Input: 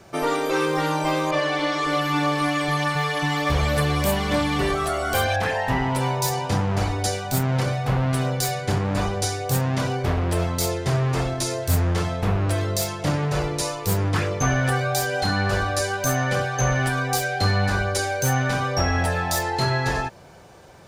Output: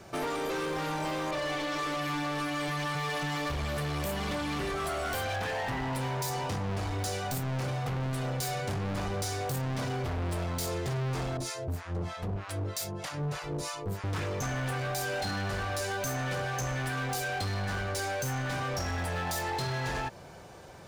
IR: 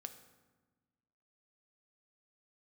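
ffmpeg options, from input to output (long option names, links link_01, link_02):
-filter_complex "[0:a]acompressor=threshold=-24dB:ratio=10,asettb=1/sr,asplit=3[link_01][link_02][link_03];[link_01]atrim=end=11.374[link_04];[link_02]atrim=start=11.37:end=14.04,asetpts=PTS-STARTPTS,afade=type=in:duration=0.004:curve=qsin,afade=type=out:start_time=2.666:duration=0.004:curve=qsin,acrossover=split=780[link_05][link_06];[link_05]aeval=exprs='val(0)*(1-1/2+1/2*cos(2*PI*3.2*n/s))':channel_layout=same[link_07];[link_06]aeval=exprs='val(0)*(1-1/2-1/2*cos(2*PI*3.2*n/s))':channel_layout=same[link_08];[link_07][link_08]amix=inputs=2:normalize=0[link_09];[link_03]atrim=start=14.036[link_10];[link_04][link_09]acrossfade=duration=0.004:curve1=hsin:curve2=qsin[link_11];[link_11][link_10]acrossfade=duration=0.004:curve1=qsin:curve2=hsin,asoftclip=type=hard:threshold=-28.5dB,volume=-1.5dB"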